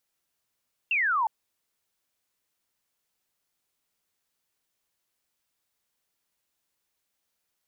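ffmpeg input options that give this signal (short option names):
-f lavfi -i "aevalsrc='0.0794*clip(t/0.002,0,1)*clip((0.36-t)/0.002,0,1)*sin(2*PI*2800*0.36/log(840/2800)*(exp(log(840/2800)*t/0.36)-1))':d=0.36:s=44100"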